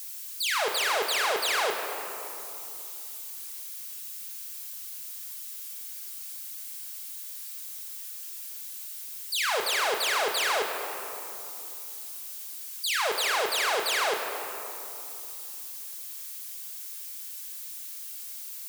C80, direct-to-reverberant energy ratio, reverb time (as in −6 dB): 5.0 dB, 1.5 dB, 2.9 s